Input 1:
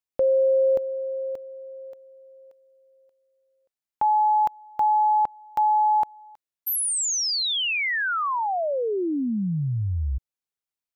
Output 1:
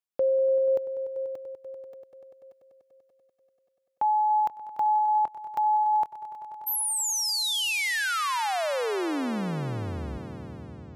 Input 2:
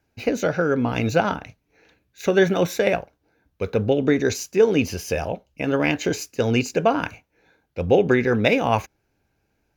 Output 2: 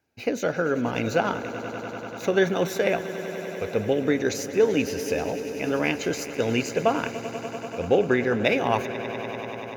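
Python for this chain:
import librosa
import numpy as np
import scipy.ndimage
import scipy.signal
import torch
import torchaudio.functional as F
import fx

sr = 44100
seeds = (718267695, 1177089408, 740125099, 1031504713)

p1 = fx.highpass(x, sr, hz=160.0, slope=6)
p2 = p1 + fx.echo_swell(p1, sr, ms=97, loudest=5, wet_db=-16.5, dry=0)
y = p2 * 10.0 ** (-3.0 / 20.0)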